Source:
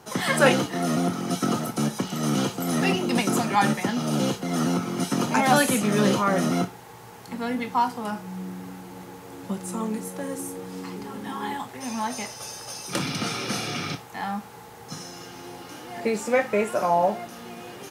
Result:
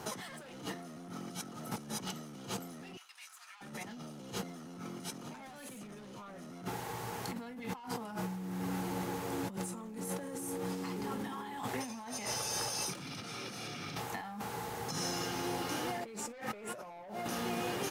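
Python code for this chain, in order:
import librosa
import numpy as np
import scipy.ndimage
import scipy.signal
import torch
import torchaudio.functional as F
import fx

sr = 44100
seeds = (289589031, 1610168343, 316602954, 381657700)

y = 10.0 ** (-21.5 / 20.0) * np.tanh(x / 10.0 ** (-21.5 / 20.0))
y = fx.over_compress(y, sr, threshold_db=-39.0, ratio=-1.0)
y = fx.highpass(y, sr, hz=1200.0, slope=24, at=(2.97, 3.61))
y = y * librosa.db_to_amplitude(-3.5)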